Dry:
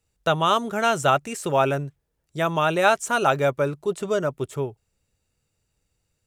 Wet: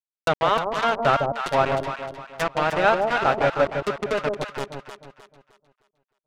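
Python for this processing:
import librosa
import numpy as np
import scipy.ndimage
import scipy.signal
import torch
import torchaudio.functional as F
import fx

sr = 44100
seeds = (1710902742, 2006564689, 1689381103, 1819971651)

y = np.where(np.abs(x) >= 10.0 ** (-19.5 / 20.0), x, 0.0)
y = fx.env_lowpass_down(y, sr, base_hz=2600.0, full_db=-20.0)
y = fx.echo_alternate(y, sr, ms=154, hz=840.0, feedback_pct=59, wet_db=-2.5)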